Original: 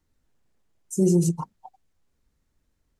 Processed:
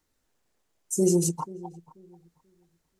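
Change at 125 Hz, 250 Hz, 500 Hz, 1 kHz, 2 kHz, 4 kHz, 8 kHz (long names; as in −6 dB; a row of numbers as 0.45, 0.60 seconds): −6.0 dB, −3.5 dB, 0.0 dB, +2.0 dB, can't be measured, +4.0 dB, +5.0 dB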